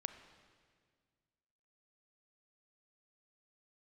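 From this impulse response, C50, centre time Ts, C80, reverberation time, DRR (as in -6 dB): 10.0 dB, 17 ms, 11.0 dB, 1.8 s, 9.0 dB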